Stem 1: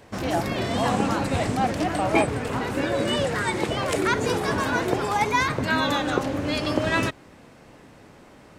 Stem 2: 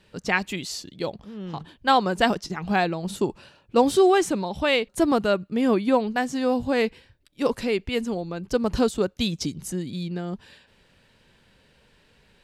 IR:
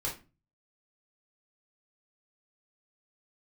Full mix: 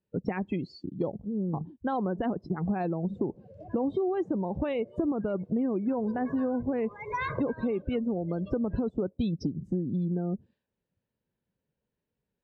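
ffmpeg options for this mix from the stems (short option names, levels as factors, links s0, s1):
-filter_complex "[0:a]acompressor=threshold=0.0447:ratio=2.5,aecho=1:1:1.9:0.7,adelay=1800,volume=0.75,afade=t=in:st=3.02:d=0.31:silence=0.281838,afade=t=in:st=5.73:d=0.28:silence=0.375837,afade=t=out:st=7.42:d=0.76:silence=0.375837[s0];[1:a]alimiter=limit=0.168:level=0:latency=1:release=16,highpass=f=99:p=1,tiltshelf=f=970:g=8.5,volume=1.12,asplit=2[s1][s2];[s2]apad=whole_len=457935[s3];[s0][s3]sidechaincompress=threshold=0.0794:ratio=16:attack=8.5:release=699[s4];[s4][s1]amix=inputs=2:normalize=0,equalizer=f=11000:w=1.4:g=-13.5,afftdn=nr=30:nf=-34,acompressor=threshold=0.0447:ratio=5"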